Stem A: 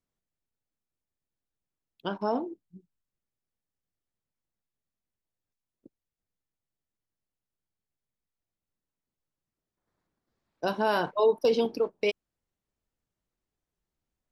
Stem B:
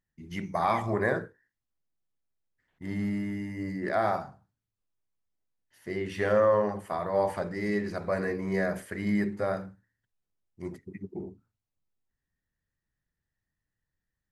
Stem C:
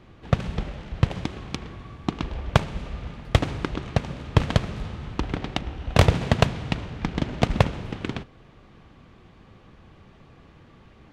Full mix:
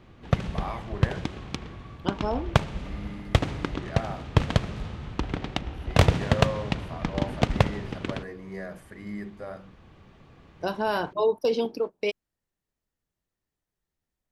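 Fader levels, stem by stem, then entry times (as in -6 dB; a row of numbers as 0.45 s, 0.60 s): -0.5 dB, -9.0 dB, -2.0 dB; 0.00 s, 0.00 s, 0.00 s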